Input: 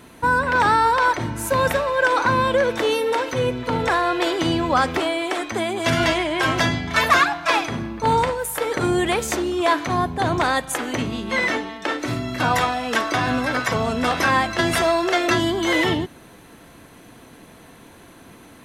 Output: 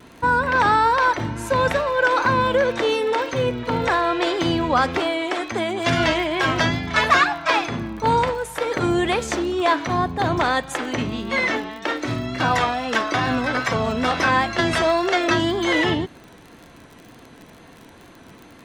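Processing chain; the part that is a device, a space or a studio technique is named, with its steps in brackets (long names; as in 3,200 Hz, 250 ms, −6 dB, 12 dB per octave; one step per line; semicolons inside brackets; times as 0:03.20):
lo-fi chain (low-pass filter 6,500 Hz 12 dB per octave; tape wow and flutter; surface crackle 44 per second −33 dBFS)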